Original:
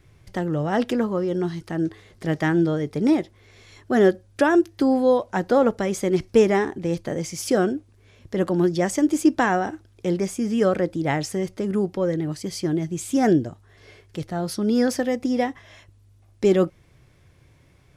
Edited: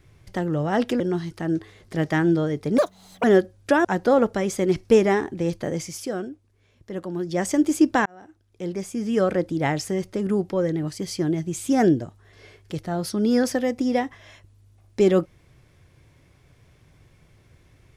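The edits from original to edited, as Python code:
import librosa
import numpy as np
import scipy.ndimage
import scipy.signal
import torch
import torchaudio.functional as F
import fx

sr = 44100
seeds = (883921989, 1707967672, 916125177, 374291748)

y = fx.edit(x, sr, fx.cut(start_s=1.0, length_s=0.3),
    fx.speed_span(start_s=3.08, length_s=0.86, speed=1.88),
    fx.cut(start_s=4.55, length_s=0.74),
    fx.fade_down_up(start_s=7.24, length_s=1.68, db=-9.0, fade_s=0.27),
    fx.fade_in_span(start_s=9.5, length_s=1.32), tone=tone)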